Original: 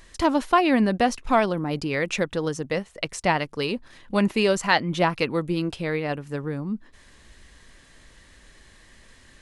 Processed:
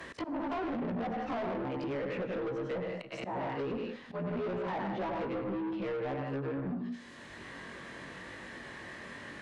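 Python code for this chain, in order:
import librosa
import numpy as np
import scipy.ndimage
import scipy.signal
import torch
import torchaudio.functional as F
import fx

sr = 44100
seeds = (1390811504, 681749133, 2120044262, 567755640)

y = fx.frame_reverse(x, sr, frame_ms=43.0)
y = fx.echo_multitap(y, sr, ms=(96, 155, 188), db=(-7.5, -12.0, -13.5))
y = np.clip(y, -10.0 ** (-23.0 / 20.0), 10.0 ** (-23.0 / 20.0))
y = fx.env_lowpass_down(y, sr, base_hz=1000.0, full_db=-24.0)
y = scipy.signal.sosfilt(scipy.signal.butter(2, 160.0, 'highpass', fs=sr, output='sos'), y)
y = fx.auto_swell(y, sr, attack_ms=213.0)
y = 10.0 ** (-32.0 / 20.0) * np.tanh(y / 10.0 ** (-32.0 / 20.0))
y = fx.lowpass(y, sr, hz=3300.0, slope=6)
y = fx.rev_schroeder(y, sr, rt60_s=0.9, comb_ms=26, drr_db=18.5)
y = fx.band_squash(y, sr, depth_pct=70)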